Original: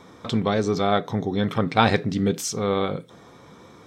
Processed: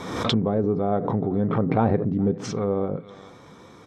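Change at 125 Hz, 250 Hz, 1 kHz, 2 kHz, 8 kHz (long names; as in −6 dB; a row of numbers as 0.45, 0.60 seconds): +1.5, +1.0, −4.0, −9.5, −11.0 decibels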